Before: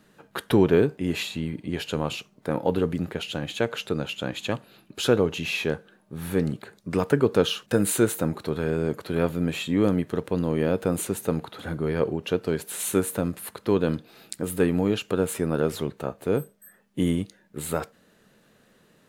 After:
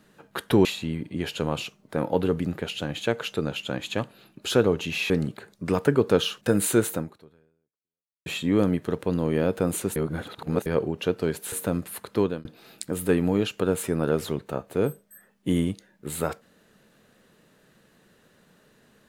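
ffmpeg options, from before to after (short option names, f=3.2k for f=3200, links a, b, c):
-filter_complex "[0:a]asplit=8[a][b][c][d][e][f][g][h];[a]atrim=end=0.652[i];[b]atrim=start=1.178:end=5.632[j];[c]atrim=start=6.348:end=9.51,asetpts=PTS-STARTPTS,afade=t=out:st=1.842:d=1.32:c=exp[k];[d]atrim=start=9.51:end=11.212,asetpts=PTS-STARTPTS,afade=t=in:d=0.004:c=hsin[l];[e]atrim=start=11.208:end=11.912,asetpts=PTS-STARTPTS,areverse[m];[f]atrim=start=11.908:end=12.772[n];[g]atrim=start=13.028:end=13.96,asetpts=PTS-STARTPTS,afade=t=out:st=0.672:d=0.26[o];[h]atrim=start=13.96,asetpts=PTS-STARTPTS,afade=t=in:d=0.004:c=hsin[p];[i][j]acrossfade=d=0.004:c1=hsin:c2=hsin[q];[k][l]concat=n=2:v=0:a=1[r];[q][r]acrossfade=d=0.004:c1=hsin:c2=hsin[s];[s][m]acrossfade=d=0.004:c1=hsin:c2=hsin[t];[t][n]acrossfade=d=0.004:c1=hsin:c2=hsin[u];[o][p]concat=n=2:v=0:a=1[v];[u][v]acrossfade=d=0.004:c1=hsin:c2=hsin"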